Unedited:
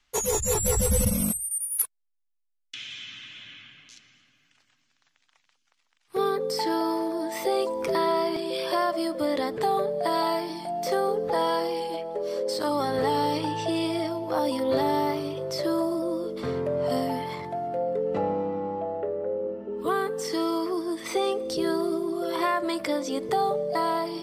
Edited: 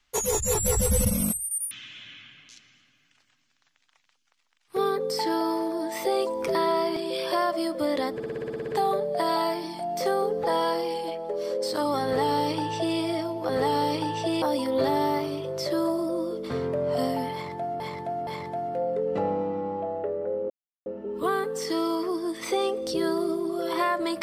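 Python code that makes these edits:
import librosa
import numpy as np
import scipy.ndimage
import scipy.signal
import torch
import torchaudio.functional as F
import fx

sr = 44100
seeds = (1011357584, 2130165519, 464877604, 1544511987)

y = fx.edit(x, sr, fx.cut(start_s=1.71, length_s=1.4),
    fx.stutter(start_s=9.54, slice_s=0.06, count=10),
    fx.duplicate(start_s=12.91, length_s=0.93, to_s=14.35),
    fx.repeat(start_s=17.26, length_s=0.47, count=3),
    fx.insert_silence(at_s=19.49, length_s=0.36), tone=tone)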